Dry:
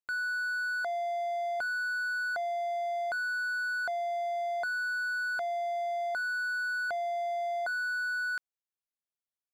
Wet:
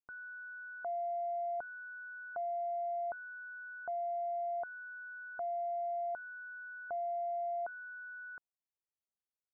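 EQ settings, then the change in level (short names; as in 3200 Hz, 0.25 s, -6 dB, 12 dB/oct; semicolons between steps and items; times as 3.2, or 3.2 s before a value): LPF 1100 Hz 24 dB/oct; -4.0 dB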